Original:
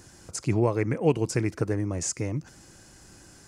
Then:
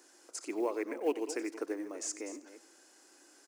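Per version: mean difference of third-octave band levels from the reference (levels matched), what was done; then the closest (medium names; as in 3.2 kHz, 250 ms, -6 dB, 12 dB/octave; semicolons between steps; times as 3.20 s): 8.5 dB: chunks repeated in reverse 199 ms, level -13 dB; steep high-pass 280 Hz 48 dB/octave; short-mantissa float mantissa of 4-bit; delay 92 ms -16.5 dB; trim -8 dB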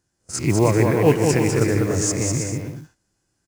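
11.0 dB: reverse spectral sustain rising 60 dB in 0.34 s; gate -37 dBFS, range -29 dB; modulation noise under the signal 26 dB; bouncing-ball echo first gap 200 ms, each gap 0.6×, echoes 5; trim +5 dB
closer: first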